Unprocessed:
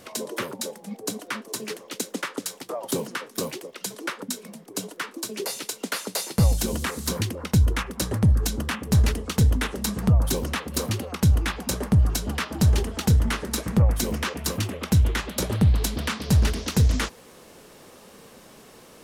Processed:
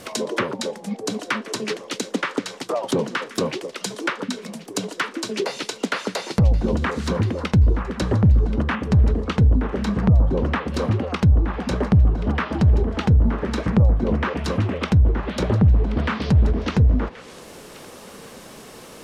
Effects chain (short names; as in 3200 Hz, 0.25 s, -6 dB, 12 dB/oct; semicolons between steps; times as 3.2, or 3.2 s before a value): vibrato 4 Hz 10 cents; limiter -16 dBFS, peak gain reduction 6.5 dB; treble ducked by the level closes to 760 Hz, closed at -21 dBFS; thin delay 1.079 s, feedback 30%, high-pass 1500 Hz, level -15.5 dB; gain +7.5 dB